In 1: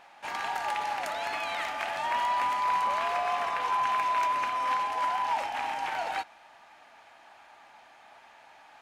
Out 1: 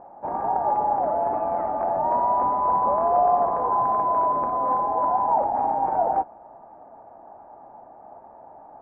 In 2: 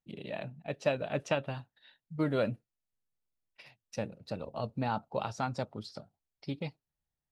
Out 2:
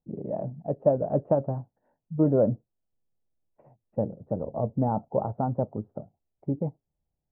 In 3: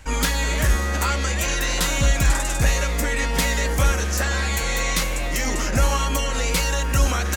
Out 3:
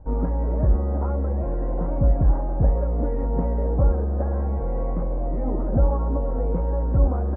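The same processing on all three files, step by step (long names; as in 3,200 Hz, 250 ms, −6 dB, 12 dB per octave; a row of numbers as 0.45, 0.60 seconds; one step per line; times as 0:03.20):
inverse Chebyshev low-pass filter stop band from 4,500 Hz, stop band 80 dB
normalise the peak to −9 dBFS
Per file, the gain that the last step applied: +14.5, +9.0, +1.0 decibels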